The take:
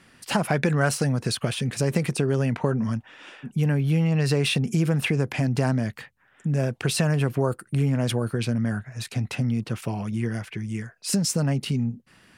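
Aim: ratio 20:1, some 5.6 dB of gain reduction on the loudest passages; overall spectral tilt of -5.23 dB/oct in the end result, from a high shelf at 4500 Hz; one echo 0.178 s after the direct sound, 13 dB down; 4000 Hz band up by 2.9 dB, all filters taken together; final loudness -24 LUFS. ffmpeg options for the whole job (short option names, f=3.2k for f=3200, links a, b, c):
-af "equalizer=f=4k:t=o:g=5.5,highshelf=f=4.5k:g=-3.5,acompressor=threshold=-23dB:ratio=20,aecho=1:1:178:0.224,volume=5dB"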